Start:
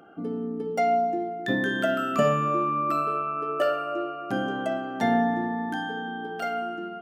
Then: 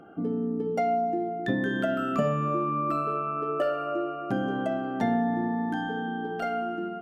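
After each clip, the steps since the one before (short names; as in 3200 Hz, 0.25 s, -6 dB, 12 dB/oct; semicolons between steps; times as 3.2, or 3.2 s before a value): tilt -2 dB/oct; compressor 2:1, threshold -26 dBFS, peak gain reduction 6.5 dB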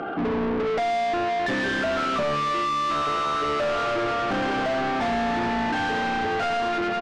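overdrive pedal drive 38 dB, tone 4000 Hz, clips at -12 dBFS; air absorption 82 m; frequency-shifting echo 0.164 s, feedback 56%, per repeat -110 Hz, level -24 dB; gain -6 dB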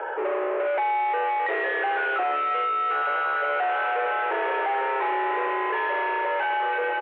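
mistuned SSB +140 Hz 240–2600 Hz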